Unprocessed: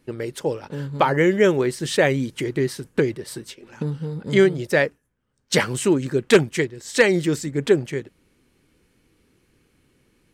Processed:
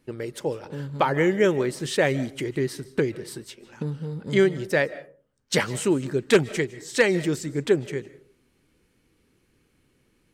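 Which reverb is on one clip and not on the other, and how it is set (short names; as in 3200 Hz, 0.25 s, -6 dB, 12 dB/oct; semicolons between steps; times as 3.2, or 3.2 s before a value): digital reverb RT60 0.43 s, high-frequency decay 0.4×, pre-delay 0.115 s, DRR 17.5 dB; gain -3.5 dB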